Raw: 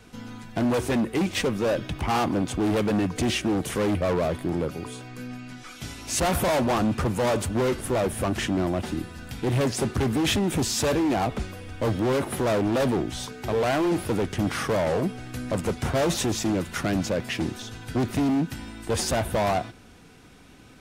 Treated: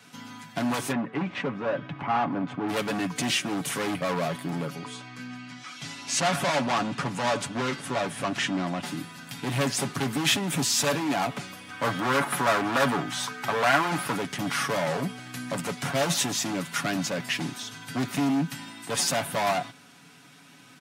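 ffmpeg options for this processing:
-filter_complex "[0:a]asplit=3[a][b][c];[a]afade=t=out:st=0.91:d=0.02[d];[b]lowpass=1.7k,afade=t=in:st=0.91:d=0.02,afade=t=out:st=2.68:d=0.02[e];[c]afade=t=in:st=2.68:d=0.02[f];[d][e][f]amix=inputs=3:normalize=0,asettb=1/sr,asplit=3[g][h][i];[g]atrim=end=4.754[j];[h]atrim=start=4.75:end=8.83,asetpts=PTS-STARTPTS,afade=t=in:d=0.004:c=qsin,afade=t=out:st=4.076:d=0.004:c=qsin,lowpass=6.9k[k];[i]atrim=start=8.826[l];[j][k]acrossfade=d=0.004:c1=hsin:c2=qsin[m];[m][l]acrossfade=d=0.004:c1=qsin:c2=hsin,asettb=1/sr,asplit=3[n][o][p];[n]atrim=end=11.704[q];[o]atrim=start=11.7:end=14.16,asetpts=PTS-STARTPTS,afade=t=in:d=0.004:c=qsin,afade=t=out:st=2.456:d=0.004:c=qsin,equalizer=f=1.3k:t=o:w=1.4:g=8[r];[p]atrim=start=14.156[s];[q][r]acrossfade=d=0.004:c1=hsin:c2=qsin[t];[t][s]acrossfade=d=0.004:c1=qsin:c2=hsin,highpass=f=160:w=0.5412,highpass=f=160:w=1.3066,equalizer=f=400:w=1:g=-11.5,aecho=1:1:7.1:0.53,volume=2dB"

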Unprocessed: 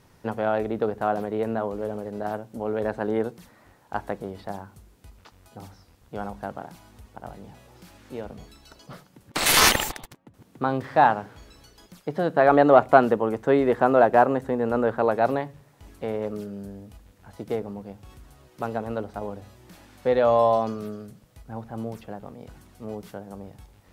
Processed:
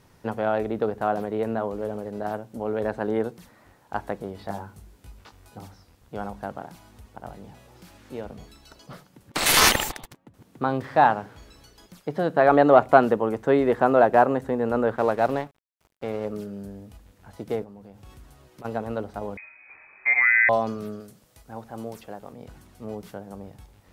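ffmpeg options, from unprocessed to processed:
-filter_complex "[0:a]asettb=1/sr,asplit=3[a][b][c];[a]atrim=end=4.394[d];[b]atrim=start=4.39:end=5.59,asetpts=PTS-STARTPTS,afade=t=in:d=0.004:c=qsin,afade=t=out:st=1.196:d=0.004:c=qsin,asplit=2[e][f];[f]adelay=19,volume=-3dB[g];[e][g]amix=inputs=2:normalize=0,atrim=end_sample=52920[h];[c]atrim=start=5.586[i];[d][h]acrossfade=d=0.004:c1=hsin:c2=qsin[j];[j][i]acrossfade=d=0.004:c1=qsin:c2=hsin,asettb=1/sr,asplit=3[k][l][m];[k]atrim=end=14.964[n];[l]atrim=start=14.96:end=16.25,asetpts=PTS-STARTPTS,afade=t=in:d=0.004:c=qsin,afade=t=out:st=1.286:d=0.004:c=qsin,aeval=exprs='sgn(val(0))*max(abs(val(0))-0.00794,0)':c=same[o];[m]atrim=start=16.246[p];[n][o]acrossfade=d=0.004:c1=hsin:c2=qsin[q];[q][p]acrossfade=d=0.004:c1=qsin:c2=hsin,asplit=3[r][s][t];[r]afade=t=out:st=17.63:d=0.02[u];[s]acompressor=threshold=-41dB:ratio=6:attack=3.2:release=140:knee=1:detection=peak,afade=t=in:st=17.63:d=0.02,afade=t=out:st=18.64:d=0.02[v];[t]afade=t=in:st=18.64:d=0.02[w];[u][v][w]amix=inputs=3:normalize=0,asettb=1/sr,asplit=3[x][y][z];[x]atrim=end=19.374[aa];[y]atrim=start=19.37:end=20.49,asetpts=PTS-STARTPTS,afade=t=in:d=0.004:c=qsin,afade=t=out:st=1.116:d=0.004:c=qsin,lowpass=f=2.2k:t=q:w=0.5098,lowpass=f=2.2k:t=q:w=0.6013,lowpass=f=2.2k:t=q:w=0.9,lowpass=f=2.2k:t=q:w=2.563,afreqshift=-2600[ab];[z]atrim=start=20.486[ac];[aa][ab]acrossfade=d=0.004:c1=hsin:c2=qsin[ad];[ad][ac]acrossfade=d=0.004:c1=qsin:c2=hsin,asettb=1/sr,asplit=3[ae][af][ag];[ae]atrim=end=21.004[ah];[af]atrim=start=21:end=22.33,asetpts=PTS-STARTPTS,afade=t=in:d=0.004:c=qsin,afade=t=out:st=1.326:d=0.004:c=qsin,bass=f=250:g=-7,treble=f=4k:g=5[ai];[ag]atrim=start=22.326[aj];[ah][ai]acrossfade=d=0.004:c1=hsin:c2=qsin[ak];[ak][aj]acrossfade=d=0.004:c1=qsin:c2=hsin"

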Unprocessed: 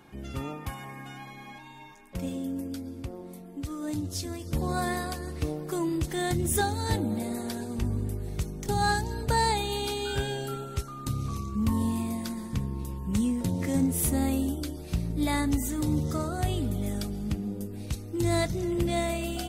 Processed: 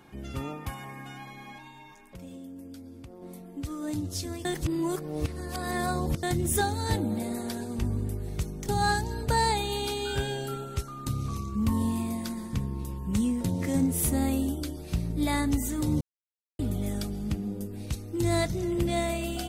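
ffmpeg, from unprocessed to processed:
-filter_complex "[0:a]asplit=3[a][b][c];[a]afade=t=out:st=1.69:d=0.02[d];[b]acompressor=threshold=-45dB:ratio=2.5:attack=3.2:release=140:knee=1:detection=peak,afade=t=in:st=1.69:d=0.02,afade=t=out:st=3.21:d=0.02[e];[c]afade=t=in:st=3.21:d=0.02[f];[d][e][f]amix=inputs=3:normalize=0,asplit=5[g][h][i][j][k];[g]atrim=end=4.452[l];[h]atrim=start=4.448:end=6.232,asetpts=PTS-STARTPTS,areverse[m];[i]atrim=start=6.228:end=16.01,asetpts=PTS-STARTPTS,afade=t=out:st=9.778:d=0.004:c=hsin[n];[j]atrim=start=16.01:end=16.59,asetpts=PTS-STARTPTS,volume=0[o];[k]atrim=start=16.59,asetpts=PTS-STARTPTS,afade=t=in:d=0.004:c=hsin[p];[l][m]acrossfade=d=0.004:c1=hsin:c2=hsin[q];[n][o][p]concat=n=3:v=0:a=1[r];[q][r]acrossfade=d=0.004:c1=hsin:c2=hsin"

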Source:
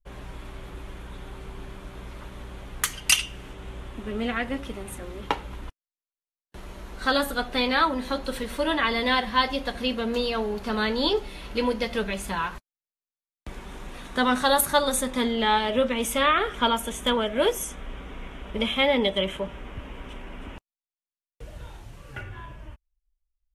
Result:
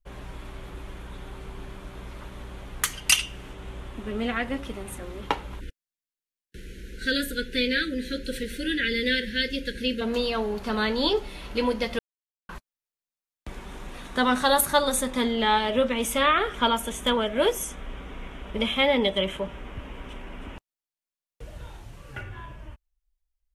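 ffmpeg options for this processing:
-filter_complex "[0:a]asplit=3[a][b][c];[a]afade=t=out:st=5.59:d=0.02[d];[b]asuperstop=centerf=880:order=20:qfactor=0.96,afade=t=in:st=5.59:d=0.02,afade=t=out:st=10:d=0.02[e];[c]afade=t=in:st=10:d=0.02[f];[d][e][f]amix=inputs=3:normalize=0,asplit=3[g][h][i];[g]atrim=end=11.99,asetpts=PTS-STARTPTS,afade=t=out:st=11.986:d=0.004:c=hsin[j];[h]atrim=start=11.99:end=12.49,asetpts=PTS-STARTPTS,volume=0[k];[i]atrim=start=12.49,asetpts=PTS-STARTPTS,afade=t=in:d=0.004:c=hsin[l];[j][k][l]concat=n=3:v=0:a=1"

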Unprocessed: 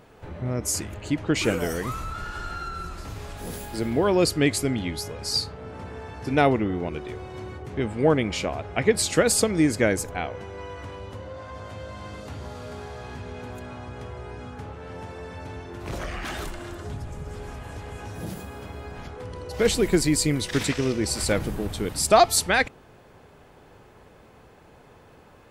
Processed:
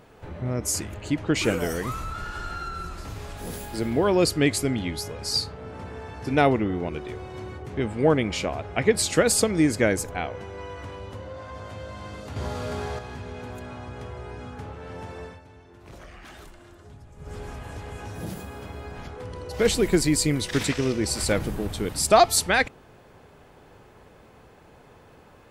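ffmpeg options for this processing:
-filter_complex "[0:a]asettb=1/sr,asplit=3[a][b][c];[a]atrim=end=12.364[d];[b]atrim=start=12.36:end=12.99,asetpts=PTS-STARTPTS,afade=t=in:d=0.004:c=qsin,afade=t=out:st=0.626:d=0.004:c=qsin,acontrast=65[e];[c]atrim=start=12.986[f];[d][e]acrossfade=d=0.004:c1=hsin:c2=qsin[g];[g][f]acrossfade=d=0.004:c1=qsin:c2=hsin,asplit=3[h][i][j];[h]atrim=end=15.41,asetpts=PTS-STARTPTS,afade=t=out:st=15.23:d=0.18:silence=0.237137[k];[i]atrim=start=15.41:end=17.16,asetpts=PTS-STARTPTS,volume=-12.5dB[l];[j]atrim=start=17.16,asetpts=PTS-STARTPTS,afade=t=in:d=0.18:silence=0.237137[m];[k][l][m]concat=n=3:v=0:a=1"

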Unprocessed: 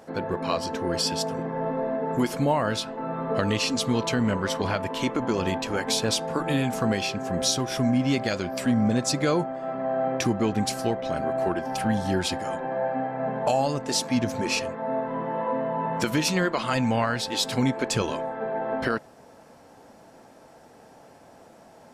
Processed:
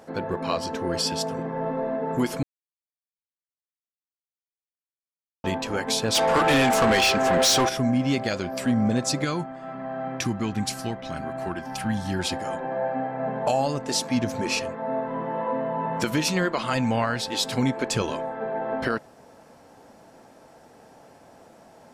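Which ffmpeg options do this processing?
-filter_complex "[0:a]asplit=3[a][b][c];[a]afade=t=out:st=6.14:d=0.02[d];[b]asplit=2[e][f];[f]highpass=f=720:p=1,volume=23dB,asoftclip=type=tanh:threshold=-11.5dB[g];[e][g]amix=inputs=2:normalize=0,lowpass=f=6.2k:p=1,volume=-6dB,afade=t=in:st=6.14:d=0.02,afade=t=out:st=7.68:d=0.02[h];[c]afade=t=in:st=7.68:d=0.02[i];[d][h][i]amix=inputs=3:normalize=0,asettb=1/sr,asplit=3[j][k][l];[j]atrim=end=9.244[m];[k]atrim=start=9.24:end=12.19,asetpts=PTS-STARTPTS,afade=t=in:d=0.004:c=qsin,afade=t=out:st=2.946:d=0.004:c=qsin,equalizer=f=510:w=1.2:g=-10[n];[l]atrim=start=12.186[o];[m][n]acrossfade=d=0.004:c1=hsin:c2=qsin[p];[p][o]acrossfade=d=0.004:c1=qsin:c2=hsin,asplit=3[q][r][s];[q]atrim=end=2.43,asetpts=PTS-STARTPTS,afade=t=out:st=2.426:d=0.004:c=hsin[t];[r]atrim=start=2.43:end=5.44,asetpts=PTS-STARTPTS,volume=0[u];[s]atrim=start=5.44,asetpts=PTS-STARTPTS,afade=t=in:d=0.004:c=hsin[v];[t][u][v]concat=n=3:v=0:a=1"

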